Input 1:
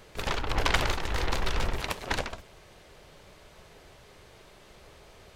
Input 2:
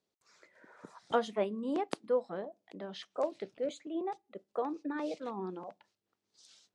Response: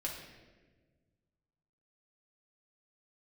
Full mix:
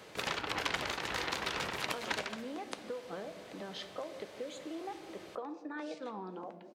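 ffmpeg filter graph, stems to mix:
-filter_complex "[0:a]highpass=160,highshelf=f=10k:g=-4.5,volume=0dB,asplit=2[a][b];[b]volume=-11.5dB[c];[1:a]acompressor=threshold=-35dB:ratio=6,adelay=800,volume=-1dB,asplit=2[d][e];[e]volume=-5dB[f];[2:a]atrim=start_sample=2205[g];[c][f]amix=inputs=2:normalize=0[h];[h][g]afir=irnorm=-1:irlink=0[i];[a][d][i]amix=inputs=3:normalize=0,acrossover=split=530|1100[j][k][l];[j]acompressor=threshold=-44dB:ratio=4[m];[k]acompressor=threshold=-46dB:ratio=4[n];[l]acompressor=threshold=-34dB:ratio=4[o];[m][n][o]amix=inputs=3:normalize=0"

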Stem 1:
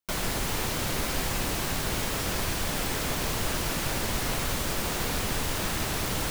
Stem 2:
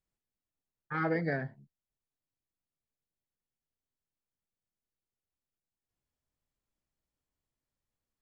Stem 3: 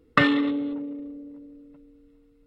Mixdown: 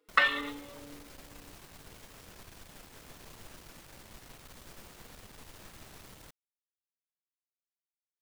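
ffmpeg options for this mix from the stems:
-filter_complex "[0:a]aeval=exprs='(tanh(14.1*val(0)+0.7)-tanh(0.7))/14.1':c=same,volume=-19dB[a];[2:a]highpass=780,asplit=2[b][c];[c]adelay=4.4,afreqshift=2.2[d];[b][d]amix=inputs=2:normalize=1,volume=0.5dB[e];[a][e]amix=inputs=2:normalize=0"

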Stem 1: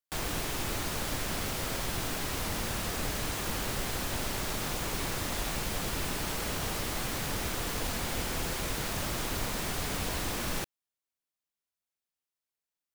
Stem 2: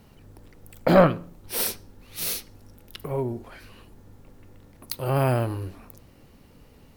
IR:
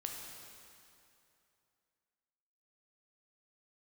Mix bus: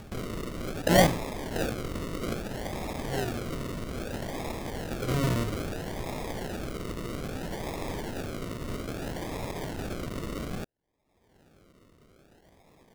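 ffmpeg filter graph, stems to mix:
-filter_complex "[0:a]highshelf=f=5.3k:g=11.5,volume=-6dB[a];[1:a]bandreject=f=50:t=h:w=6,bandreject=f=100:t=h:w=6,bandreject=f=150:t=h:w=6,bandreject=f=200:t=h:w=6,bandreject=f=250:t=h:w=6,bandreject=f=300:t=h:w=6,bandreject=f=350:t=h:w=6,volume=-4.5dB[b];[a][b]amix=inputs=2:normalize=0,acrusher=samples=42:mix=1:aa=0.000001:lfo=1:lforange=25.2:lforate=0.61,acompressor=mode=upward:threshold=-35dB:ratio=2.5"

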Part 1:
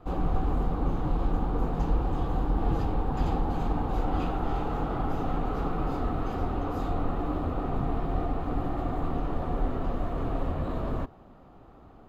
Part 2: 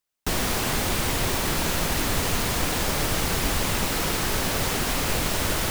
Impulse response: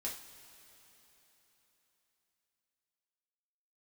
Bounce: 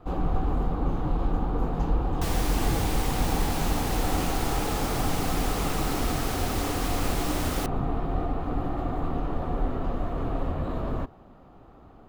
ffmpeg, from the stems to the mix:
-filter_complex "[0:a]volume=1dB[a];[1:a]adelay=1950,volume=-8dB[b];[a][b]amix=inputs=2:normalize=0"

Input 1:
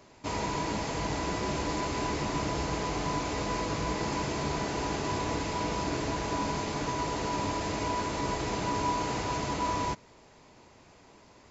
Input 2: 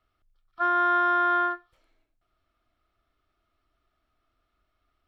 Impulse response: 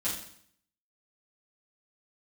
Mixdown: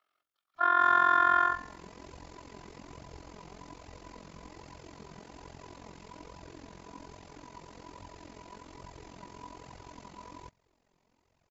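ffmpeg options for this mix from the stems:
-filter_complex "[0:a]flanger=delay=1:depth=4.8:regen=34:speed=1.2:shape=triangular,adelay=550,volume=-11.5dB[a];[1:a]highpass=540,volume=1dB,asplit=2[b][c];[c]volume=-14.5dB[d];[2:a]atrim=start_sample=2205[e];[d][e]afir=irnorm=-1:irlink=0[f];[a][b][f]amix=inputs=3:normalize=0,lowshelf=f=200:g=4,tremolo=f=44:d=0.824"

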